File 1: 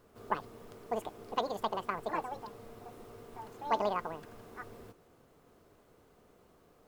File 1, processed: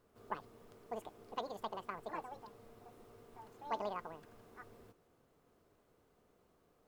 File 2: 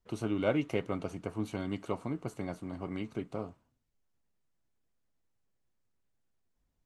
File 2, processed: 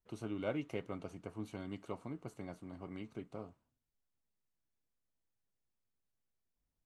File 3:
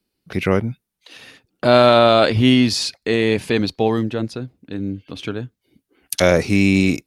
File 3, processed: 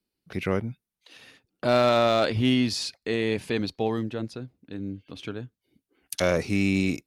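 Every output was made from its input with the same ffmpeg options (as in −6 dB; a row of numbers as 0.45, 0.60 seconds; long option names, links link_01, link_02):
-af "volume=5.5dB,asoftclip=hard,volume=-5.5dB,volume=-8.5dB"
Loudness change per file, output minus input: −8.0, −8.5, −8.5 LU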